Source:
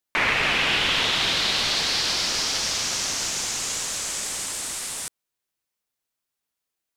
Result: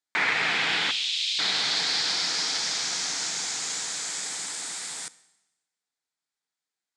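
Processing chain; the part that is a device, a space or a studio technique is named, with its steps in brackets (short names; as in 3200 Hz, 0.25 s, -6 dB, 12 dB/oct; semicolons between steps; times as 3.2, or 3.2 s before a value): 0.91–1.39 Chebyshev high-pass 2600 Hz, order 4; television speaker (speaker cabinet 170–8000 Hz, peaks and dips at 230 Hz -10 dB, 370 Hz -7 dB, 570 Hz -10 dB, 1100 Hz -6 dB, 2800 Hz -8 dB, 5900 Hz -4 dB); Schroeder reverb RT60 0.99 s, combs from 30 ms, DRR 18.5 dB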